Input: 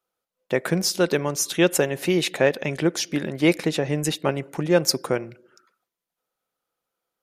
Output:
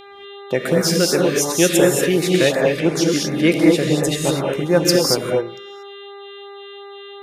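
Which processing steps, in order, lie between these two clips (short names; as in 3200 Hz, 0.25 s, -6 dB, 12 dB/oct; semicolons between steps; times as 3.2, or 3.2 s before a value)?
buzz 400 Hz, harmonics 10, -43 dBFS -3 dB/oct; non-linear reverb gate 0.26 s rising, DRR -1.5 dB; LFO notch sine 2.8 Hz 770–3200 Hz; gain +2.5 dB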